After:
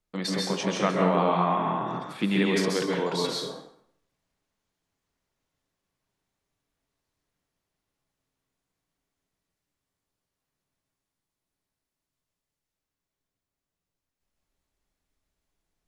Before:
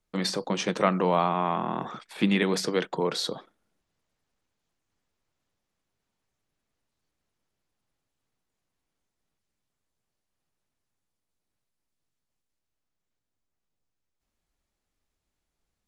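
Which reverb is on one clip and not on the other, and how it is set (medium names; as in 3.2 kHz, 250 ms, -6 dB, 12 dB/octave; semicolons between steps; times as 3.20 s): plate-style reverb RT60 0.66 s, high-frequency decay 0.8×, pre-delay 120 ms, DRR -1.5 dB; trim -3 dB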